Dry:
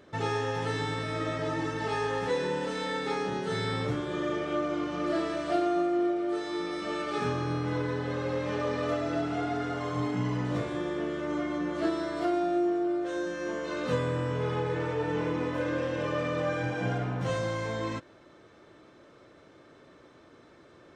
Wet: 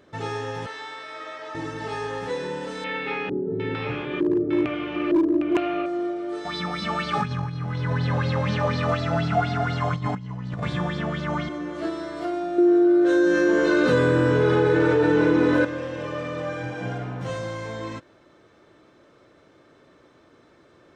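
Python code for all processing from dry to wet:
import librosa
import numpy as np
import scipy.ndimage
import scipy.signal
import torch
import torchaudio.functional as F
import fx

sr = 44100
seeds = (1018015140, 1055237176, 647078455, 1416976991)

y = fx.chain(x, sr, fx.highpass(hz=720.0, slope=12),
    fx.air_absorb(metres=74.0), at=(0.66, 1.55))
y = fx.chain(y, sr, fx.filter_lfo_lowpass(shape='square', hz=1.1, low_hz=340.0, high_hz=2600.0, q=4.8),
    fx.clip_hard(threshold_db=-16.0),
    fx.echo_single(ms=756, db=-6.5), at=(2.84, 5.86))
y = fx.chain(y, sr, fx.low_shelf_res(hz=250.0, db=9.0, q=3.0),
    fx.over_compress(threshold_db=-25.0, ratio=-0.5),
    fx.bell_lfo(hz=4.1, low_hz=690.0, high_hz=4600.0, db=15), at=(6.45, 11.49))
y = fx.chain(y, sr, fx.small_body(hz=(350.0, 1500.0, 3900.0), ring_ms=20, db=10),
    fx.env_flatten(amount_pct=70), at=(12.58, 15.65))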